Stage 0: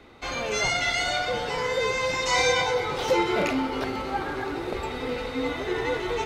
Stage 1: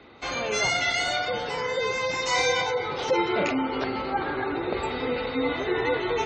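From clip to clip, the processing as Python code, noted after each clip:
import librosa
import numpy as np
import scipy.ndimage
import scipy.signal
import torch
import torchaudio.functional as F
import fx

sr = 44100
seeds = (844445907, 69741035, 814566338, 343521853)

y = fx.highpass(x, sr, hz=100.0, slope=6)
y = fx.spec_gate(y, sr, threshold_db=-30, keep='strong')
y = fx.rider(y, sr, range_db=3, speed_s=2.0)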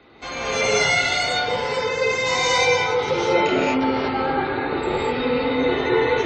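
y = fx.rev_gated(x, sr, seeds[0], gate_ms=260, shape='rising', drr_db=-6.0)
y = y * 10.0 ** (-1.5 / 20.0)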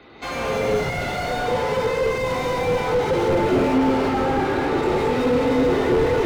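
y = fx.slew_limit(x, sr, full_power_hz=49.0)
y = y * 10.0 ** (4.0 / 20.0)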